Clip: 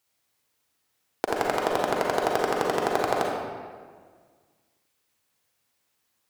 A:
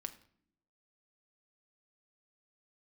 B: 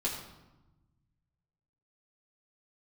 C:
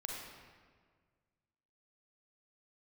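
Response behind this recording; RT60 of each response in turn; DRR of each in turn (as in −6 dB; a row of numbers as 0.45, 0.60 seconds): C; non-exponential decay, 1.0 s, 1.7 s; 6.5, −6.0, −1.5 decibels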